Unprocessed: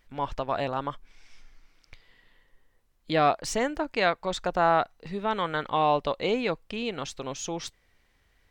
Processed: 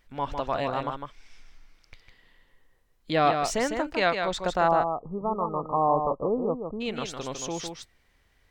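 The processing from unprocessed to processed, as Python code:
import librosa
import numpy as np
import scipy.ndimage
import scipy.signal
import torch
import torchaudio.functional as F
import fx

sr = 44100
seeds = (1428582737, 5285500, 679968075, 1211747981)

y = fx.brickwall_lowpass(x, sr, high_hz=1300.0, at=(4.67, 6.8), fade=0.02)
y = y + 10.0 ** (-6.0 / 20.0) * np.pad(y, (int(154 * sr / 1000.0), 0))[:len(y)]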